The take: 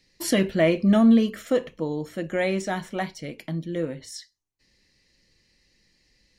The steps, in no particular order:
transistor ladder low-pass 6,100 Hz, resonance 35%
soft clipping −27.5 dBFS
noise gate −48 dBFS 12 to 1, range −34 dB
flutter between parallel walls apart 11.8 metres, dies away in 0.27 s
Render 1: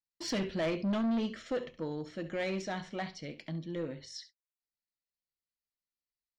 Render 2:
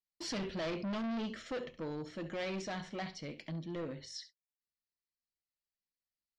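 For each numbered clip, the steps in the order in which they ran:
flutter between parallel walls, then noise gate, then transistor ladder low-pass, then soft clipping
flutter between parallel walls, then noise gate, then soft clipping, then transistor ladder low-pass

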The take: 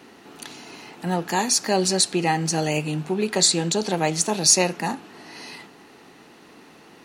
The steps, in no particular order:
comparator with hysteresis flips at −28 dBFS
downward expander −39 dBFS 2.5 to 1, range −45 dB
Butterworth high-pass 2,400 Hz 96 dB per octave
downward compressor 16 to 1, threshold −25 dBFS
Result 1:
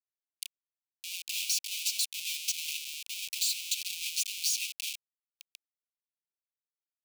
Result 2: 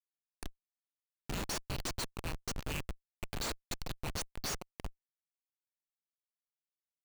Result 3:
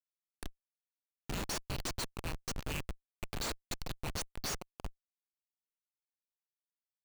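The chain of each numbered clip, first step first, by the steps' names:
downward expander, then comparator with hysteresis, then Butterworth high-pass, then downward compressor
downward expander, then Butterworth high-pass, then downward compressor, then comparator with hysteresis
Butterworth high-pass, then downward expander, then downward compressor, then comparator with hysteresis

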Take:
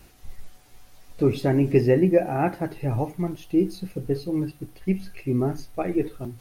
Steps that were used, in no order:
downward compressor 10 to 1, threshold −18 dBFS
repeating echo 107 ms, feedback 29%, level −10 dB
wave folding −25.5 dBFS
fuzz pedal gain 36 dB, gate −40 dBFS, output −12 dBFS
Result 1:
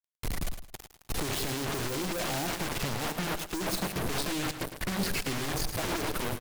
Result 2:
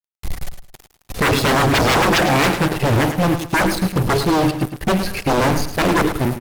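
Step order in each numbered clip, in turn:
fuzz pedal, then downward compressor, then wave folding, then repeating echo
wave folding, then downward compressor, then fuzz pedal, then repeating echo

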